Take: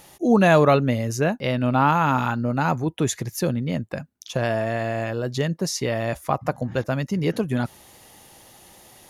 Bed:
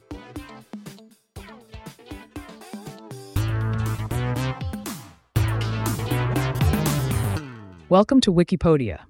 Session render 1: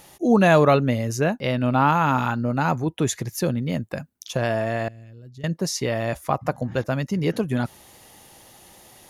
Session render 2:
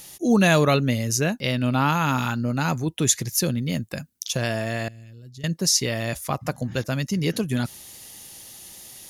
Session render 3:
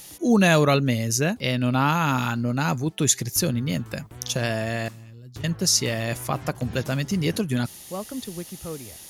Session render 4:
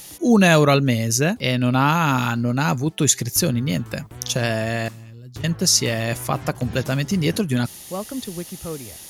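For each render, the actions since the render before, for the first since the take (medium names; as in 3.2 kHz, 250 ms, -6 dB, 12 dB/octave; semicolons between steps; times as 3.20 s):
3.57–4.35 s: treble shelf 8.9 kHz +7.5 dB; 4.88–5.44 s: amplifier tone stack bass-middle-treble 10-0-1
FFT filter 210 Hz 0 dB, 840 Hz -6 dB, 5.3 kHz +9 dB
add bed -17 dB
trim +3.5 dB; peak limiter -3 dBFS, peak gain reduction 1.5 dB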